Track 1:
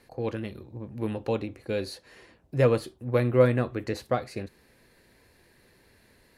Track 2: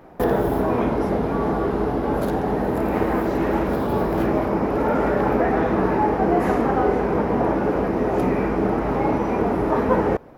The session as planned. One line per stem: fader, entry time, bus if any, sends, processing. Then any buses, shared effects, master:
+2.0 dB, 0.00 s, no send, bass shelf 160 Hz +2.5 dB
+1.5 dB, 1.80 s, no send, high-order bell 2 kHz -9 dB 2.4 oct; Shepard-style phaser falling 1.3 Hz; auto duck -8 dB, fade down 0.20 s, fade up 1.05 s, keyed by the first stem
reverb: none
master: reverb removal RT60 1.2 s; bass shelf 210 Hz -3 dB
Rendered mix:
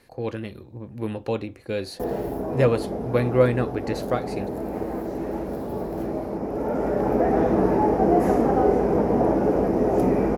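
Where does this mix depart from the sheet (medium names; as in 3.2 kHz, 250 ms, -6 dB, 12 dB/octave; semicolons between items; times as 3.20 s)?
stem 2: missing Shepard-style phaser falling 1.3 Hz; master: missing reverb removal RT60 1.2 s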